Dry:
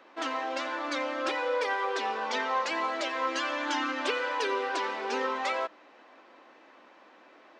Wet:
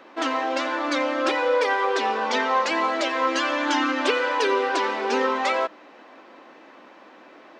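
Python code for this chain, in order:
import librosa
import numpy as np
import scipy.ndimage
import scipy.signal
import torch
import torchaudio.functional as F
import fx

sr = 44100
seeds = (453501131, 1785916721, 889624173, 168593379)

y = fx.low_shelf(x, sr, hz=310.0, db=7.0)
y = F.gain(torch.from_numpy(y), 6.5).numpy()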